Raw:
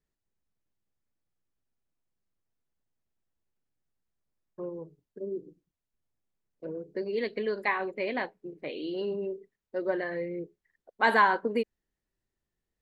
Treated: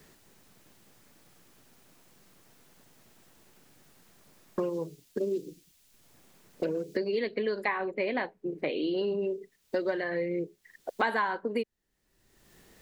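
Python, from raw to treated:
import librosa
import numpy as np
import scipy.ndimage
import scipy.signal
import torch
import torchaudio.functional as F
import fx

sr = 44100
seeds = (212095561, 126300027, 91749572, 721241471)

y = fx.band_squash(x, sr, depth_pct=100)
y = y * librosa.db_to_amplitude(1.0)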